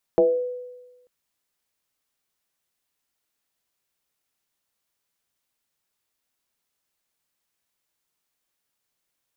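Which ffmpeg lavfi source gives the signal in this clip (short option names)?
-f lavfi -i "aevalsrc='0.251*pow(10,-3*t/1.18)*sin(2*PI*496*t+1.2*pow(10,-3*t/0.49)*sin(2*PI*0.31*496*t))':d=0.89:s=44100"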